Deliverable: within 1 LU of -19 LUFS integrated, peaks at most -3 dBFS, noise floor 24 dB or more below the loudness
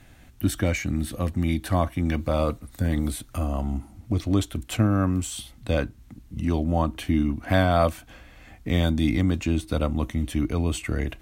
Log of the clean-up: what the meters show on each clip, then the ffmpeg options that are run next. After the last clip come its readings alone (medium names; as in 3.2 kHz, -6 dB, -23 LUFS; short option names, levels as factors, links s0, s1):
loudness -25.5 LUFS; peak level -7.0 dBFS; loudness target -19.0 LUFS
-> -af "volume=2.11,alimiter=limit=0.708:level=0:latency=1"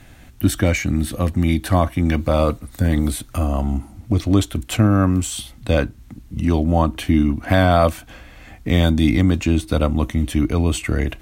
loudness -19.5 LUFS; peak level -3.0 dBFS; noise floor -44 dBFS